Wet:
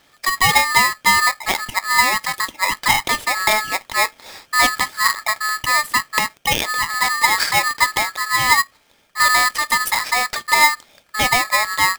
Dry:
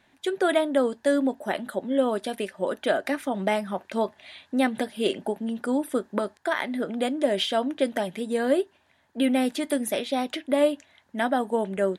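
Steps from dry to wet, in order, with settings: polarity switched at an audio rate 1.5 kHz; trim +7.5 dB

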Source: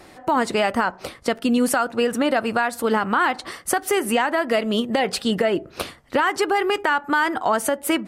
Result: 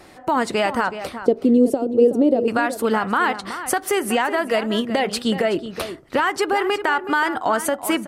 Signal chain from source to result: 1.19–2.48 s: FFT filter 180 Hz 0 dB, 420 Hz +11 dB, 1.5 kHz -27 dB, 3.3 kHz -14 dB; echo from a far wall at 64 m, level -11 dB

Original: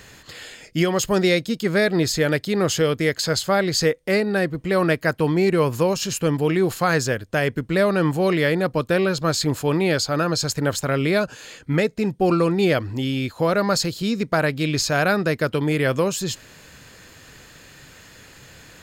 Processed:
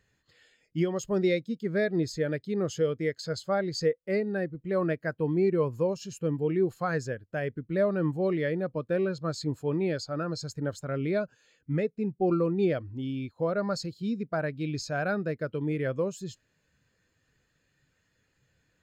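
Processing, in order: spectral contrast expander 1.5:1; trim -7.5 dB

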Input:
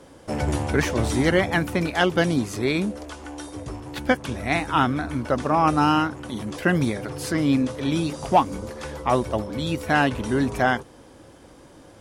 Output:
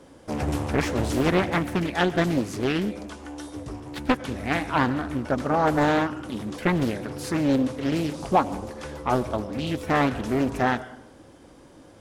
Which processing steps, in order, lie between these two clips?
peaking EQ 260 Hz +3 dB 0.9 oct; on a send at -15.5 dB: reverberation RT60 0.80 s, pre-delay 65 ms; on the sum: loudspeaker Doppler distortion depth 0.77 ms; trim -3 dB

